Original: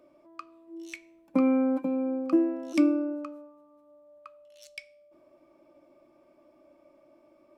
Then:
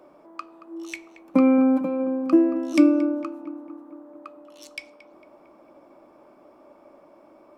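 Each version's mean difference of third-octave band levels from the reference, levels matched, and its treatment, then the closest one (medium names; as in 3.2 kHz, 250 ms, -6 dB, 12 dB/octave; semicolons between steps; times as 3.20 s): 2.5 dB: band noise 200–1100 Hz -64 dBFS; hum notches 60/120 Hz; filtered feedback delay 226 ms, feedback 65%, low-pass 2.2 kHz, level -14 dB; trim +6 dB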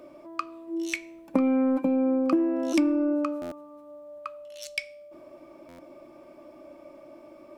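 4.0 dB: in parallel at -6 dB: saturation -25.5 dBFS, distortion -9 dB; on the sum: compression 6:1, threshold -29 dBFS, peak gain reduction 12.5 dB; buffer glitch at 3.41/5.68 s, samples 512, times 8; trim +8 dB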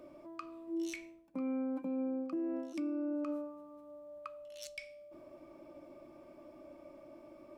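5.5 dB: bass shelf 190 Hz +7 dB; reverse; compression 6:1, threshold -36 dBFS, peak gain reduction 19 dB; reverse; peak limiter -35 dBFS, peak gain reduction 8 dB; trim +4.5 dB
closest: first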